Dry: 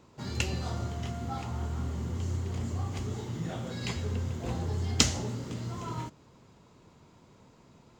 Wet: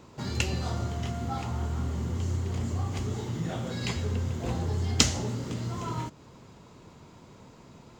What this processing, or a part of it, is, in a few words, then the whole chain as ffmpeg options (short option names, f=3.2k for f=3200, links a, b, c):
parallel compression: -filter_complex "[0:a]asplit=2[a][b];[b]acompressor=threshold=-43dB:ratio=6,volume=-1dB[c];[a][c]amix=inputs=2:normalize=0,volume=1dB"